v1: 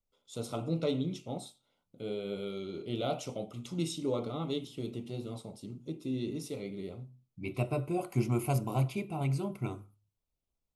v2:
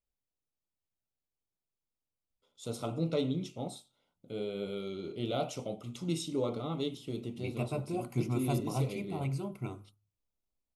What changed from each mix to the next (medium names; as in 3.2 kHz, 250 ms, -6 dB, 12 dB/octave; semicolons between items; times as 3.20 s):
first voice: entry +2.30 s; second voice -3.0 dB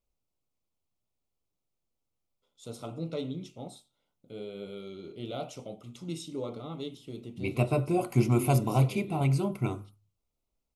first voice -3.5 dB; second voice +8.5 dB